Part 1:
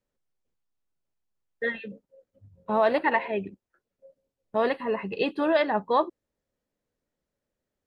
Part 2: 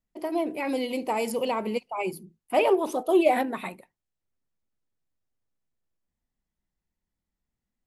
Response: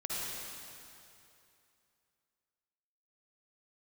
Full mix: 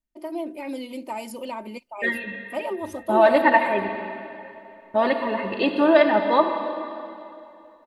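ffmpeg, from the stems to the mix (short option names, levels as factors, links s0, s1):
-filter_complex "[0:a]adelay=400,volume=1.06,asplit=2[s0][s1];[s1]volume=0.447[s2];[1:a]alimiter=limit=0.158:level=0:latency=1:release=102,volume=0.473[s3];[2:a]atrim=start_sample=2205[s4];[s2][s4]afir=irnorm=-1:irlink=0[s5];[s0][s3][s5]amix=inputs=3:normalize=0,aecho=1:1:3.3:0.69"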